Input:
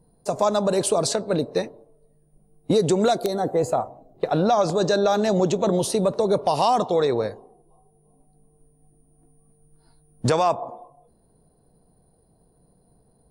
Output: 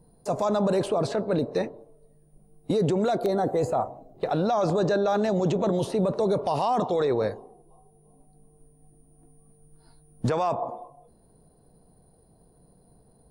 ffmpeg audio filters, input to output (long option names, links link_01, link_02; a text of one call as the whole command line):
ffmpeg -i in.wav -filter_complex "[0:a]acrossover=split=2700[link_01][link_02];[link_01]alimiter=limit=-19dB:level=0:latency=1:release=10[link_03];[link_02]acompressor=threshold=-48dB:ratio=6[link_04];[link_03][link_04]amix=inputs=2:normalize=0,volume=2dB" out.wav